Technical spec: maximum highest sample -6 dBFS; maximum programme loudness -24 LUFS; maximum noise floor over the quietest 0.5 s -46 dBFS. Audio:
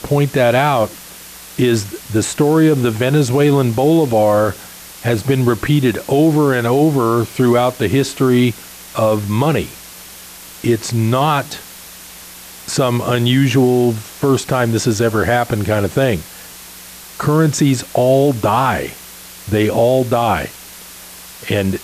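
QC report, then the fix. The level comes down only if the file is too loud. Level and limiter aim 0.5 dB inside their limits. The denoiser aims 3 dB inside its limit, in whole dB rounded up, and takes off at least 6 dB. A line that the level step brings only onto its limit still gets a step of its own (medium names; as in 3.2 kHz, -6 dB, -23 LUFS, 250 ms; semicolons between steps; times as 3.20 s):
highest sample -4.0 dBFS: fail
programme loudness -15.5 LUFS: fail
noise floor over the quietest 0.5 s -36 dBFS: fail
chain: noise reduction 6 dB, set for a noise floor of -36 dBFS; trim -9 dB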